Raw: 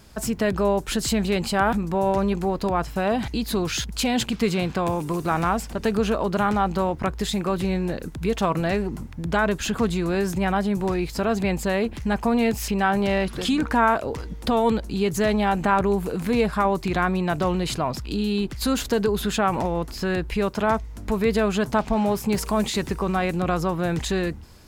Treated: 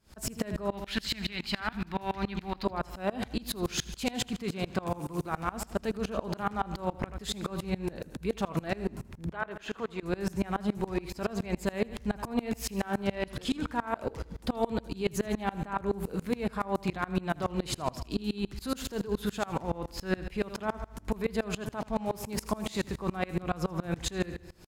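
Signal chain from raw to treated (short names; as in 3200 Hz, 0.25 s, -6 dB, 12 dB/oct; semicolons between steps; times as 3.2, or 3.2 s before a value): 0.72–2.65 graphic EQ 125/500/2000/4000/8000 Hz -5/-12/+8/+9/-8 dB; limiter -16.5 dBFS, peak gain reduction 9.5 dB; 9.32–10.03 tone controls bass -14 dB, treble -14 dB; feedback echo 80 ms, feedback 51%, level -11.5 dB; dB-ramp tremolo swelling 7.1 Hz, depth 26 dB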